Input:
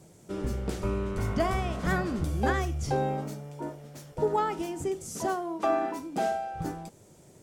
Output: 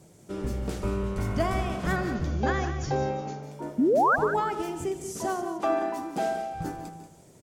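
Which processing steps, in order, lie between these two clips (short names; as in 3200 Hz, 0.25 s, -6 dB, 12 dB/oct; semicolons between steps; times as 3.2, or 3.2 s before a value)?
1.96–3.43 brick-wall FIR low-pass 7200 Hz; 3.78–4.16 painted sound rise 220–1700 Hz -21 dBFS; on a send: tapped delay 82/148/185/348 ms -17/-13.5/-11/-18.5 dB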